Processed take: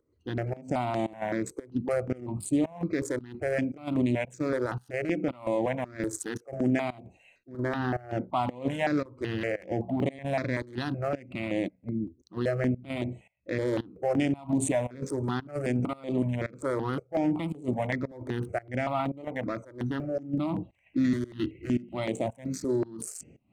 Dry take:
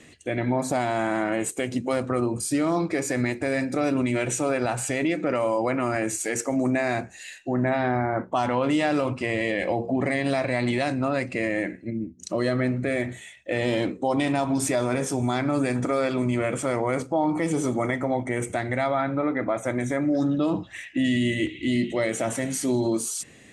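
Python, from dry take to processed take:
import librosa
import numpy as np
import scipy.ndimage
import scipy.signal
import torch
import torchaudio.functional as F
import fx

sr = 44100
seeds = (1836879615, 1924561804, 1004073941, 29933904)

y = fx.wiener(x, sr, points=25)
y = fx.volume_shaper(y, sr, bpm=113, per_beat=1, depth_db=-21, release_ms=153.0, shape='slow start')
y = fx.phaser_held(y, sr, hz=5.3, low_hz=730.0, high_hz=5200.0)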